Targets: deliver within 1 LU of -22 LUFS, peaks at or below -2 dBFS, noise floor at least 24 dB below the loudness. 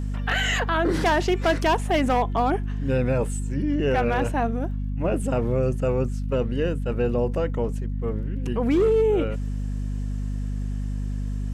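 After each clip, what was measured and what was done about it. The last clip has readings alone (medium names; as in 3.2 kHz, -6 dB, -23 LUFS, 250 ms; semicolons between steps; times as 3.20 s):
tick rate 35 per s; hum 50 Hz; highest harmonic 250 Hz; hum level -25 dBFS; loudness -24.5 LUFS; peak level -12.5 dBFS; loudness target -22.0 LUFS
-> de-click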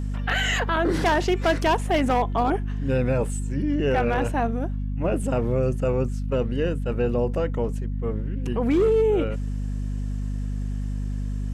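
tick rate 1.0 per s; hum 50 Hz; highest harmonic 250 Hz; hum level -25 dBFS
-> de-hum 50 Hz, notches 5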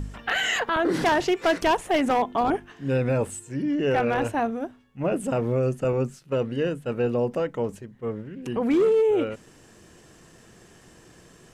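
hum not found; loudness -25.0 LUFS; peak level -11.5 dBFS; loudness target -22.0 LUFS
-> trim +3 dB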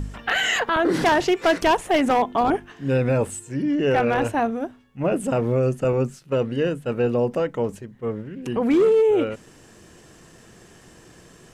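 loudness -22.0 LUFS; peak level -8.5 dBFS; noise floor -50 dBFS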